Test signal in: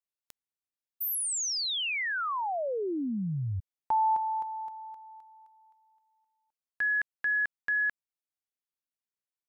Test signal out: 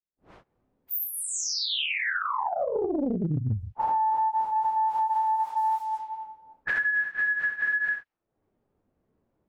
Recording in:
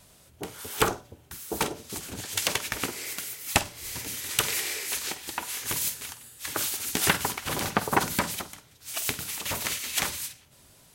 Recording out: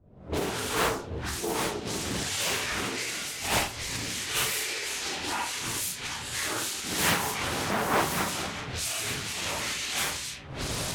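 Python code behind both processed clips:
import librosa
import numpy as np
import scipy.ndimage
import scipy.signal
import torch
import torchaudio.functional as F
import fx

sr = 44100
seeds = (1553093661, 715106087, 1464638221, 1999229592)

y = fx.phase_scramble(x, sr, seeds[0], window_ms=200)
y = fx.recorder_agc(y, sr, target_db=-20.5, rise_db_per_s=66.0, max_gain_db=37)
y = fx.env_lowpass(y, sr, base_hz=380.0, full_db=-24.5)
y = fx.doppler_dist(y, sr, depth_ms=0.89)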